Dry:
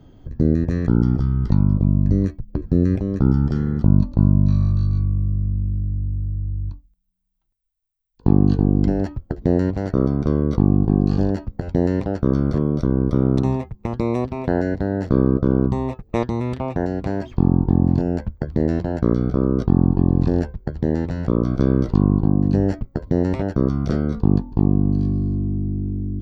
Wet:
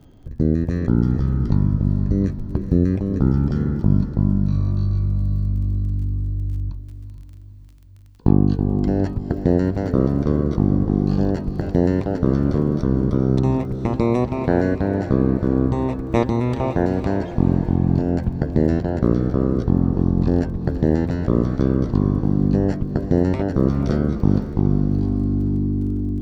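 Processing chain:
surface crackle 29 per second −42 dBFS
speech leveller within 3 dB 0.5 s
feedback delay with all-pass diffusion 459 ms, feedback 50%, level −10 dB

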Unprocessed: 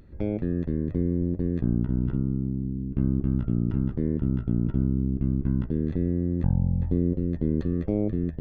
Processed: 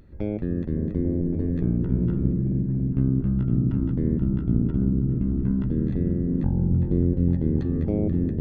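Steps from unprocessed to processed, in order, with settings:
echo whose low-pass opens from repeat to repeat 281 ms, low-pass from 200 Hz, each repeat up 1 octave, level −3 dB

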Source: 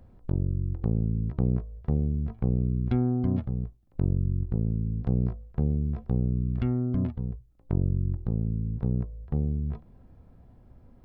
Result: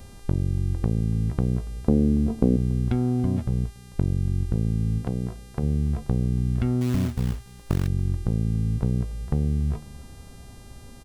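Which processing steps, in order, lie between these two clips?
0:06.81–0:07.88: floating-point word with a short mantissa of 2 bits
downward compressor 6 to 1, threshold −28 dBFS, peak gain reduction 8 dB
0:01.88–0:02.57: octave-band graphic EQ 125/250/500/2,000 Hz −5/+12/+7/−10 dB
hum with harmonics 400 Hz, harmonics 30, −63 dBFS −2 dB per octave
0:04.98–0:05.63: low-shelf EQ 130 Hz −9 dB
single-tap delay 284 ms −22 dB
level +8.5 dB

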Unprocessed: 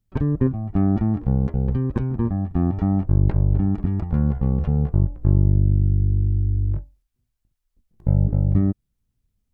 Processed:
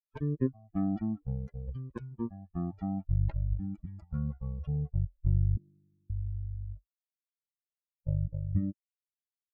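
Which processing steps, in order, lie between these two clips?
spectral dynamics exaggerated over time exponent 3
0:05.57–0:06.10: elliptic high-pass filter 200 Hz, stop band 60 dB
level −6.5 dB

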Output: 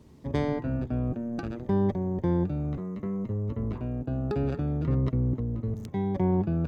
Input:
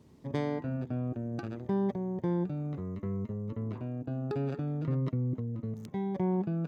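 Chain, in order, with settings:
sub-octave generator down 1 octave, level −5 dB
level +4 dB

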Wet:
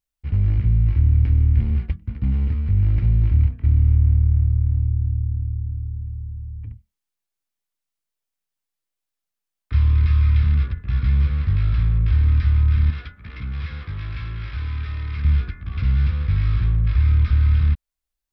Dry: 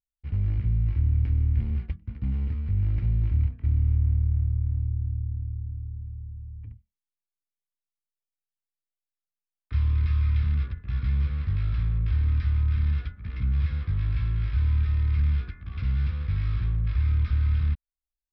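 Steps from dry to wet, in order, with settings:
0:12.90–0:15.25: low-shelf EQ 230 Hz −12 dB
level +7 dB

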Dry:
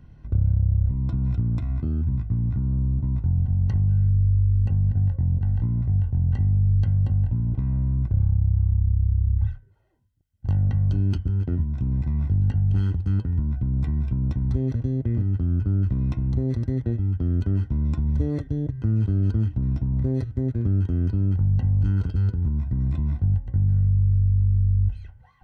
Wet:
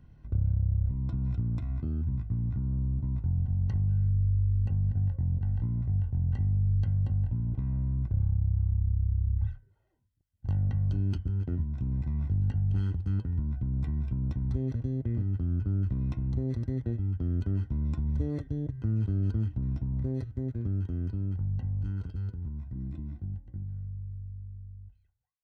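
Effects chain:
fade-out on the ending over 6.12 s
0:22.75–0:23.64: thirty-one-band graphic EQ 200 Hz +6 dB, 315 Hz +11 dB, 1,000 Hz −4 dB
level −6.5 dB

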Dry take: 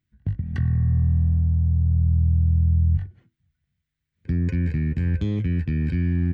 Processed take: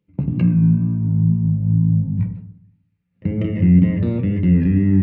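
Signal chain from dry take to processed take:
gliding playback speed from 143% → 109%
low-shelf EQ 100 Hz −8.5 dB
in parallel at −1 dB: compressor whose output falls as the input rises −26 dBFS
on the sum: low-pass filter 1,800 Hz 12 dB per octave
tape wow and flutter 53 cents
on a send at −4 dB: convolution reverb RT60 0.60 s, pre-delay 3 ms

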